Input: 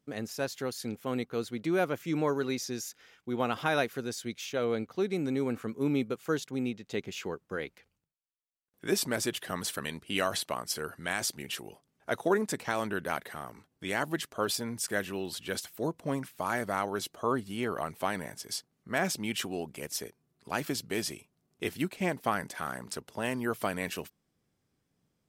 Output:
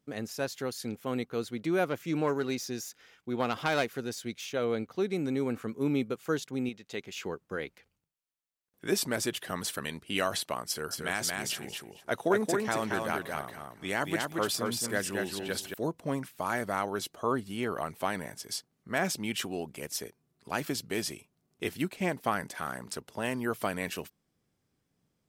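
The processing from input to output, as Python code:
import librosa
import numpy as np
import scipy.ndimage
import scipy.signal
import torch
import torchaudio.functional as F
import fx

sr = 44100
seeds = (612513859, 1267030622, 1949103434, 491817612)

y = fx.self_delay(x, sr, depth_ms=0.1, at=(1.84, 4.53))
y = fx.low_shelf(y, sr, hz=490.0, db=-7.5, at=(6.69, 7.17))
y = fx.echo_feedback(y, sr, ms=227, feedback_pct=16, wet_db=-3.5, at=(10.68, 15.74))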